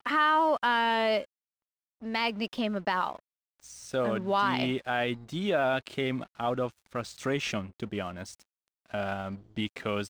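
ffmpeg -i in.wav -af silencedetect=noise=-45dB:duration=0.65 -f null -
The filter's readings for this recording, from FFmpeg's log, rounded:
silence_start: 1.25
silence_end: 2.02 | silence_duration: 0.77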